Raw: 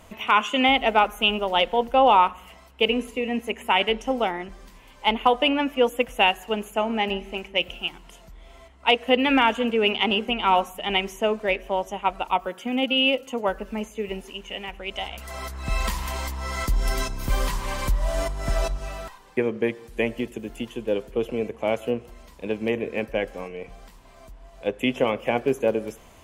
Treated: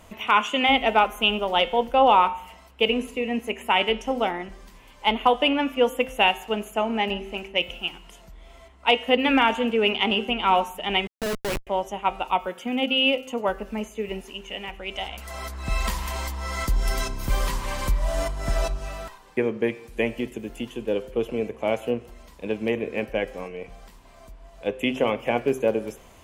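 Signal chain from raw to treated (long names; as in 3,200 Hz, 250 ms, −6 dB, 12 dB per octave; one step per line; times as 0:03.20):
hum removal 129.7 Hz, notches 36
0:11.07–0:11.67: comparator with hysteresis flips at −25 dBFS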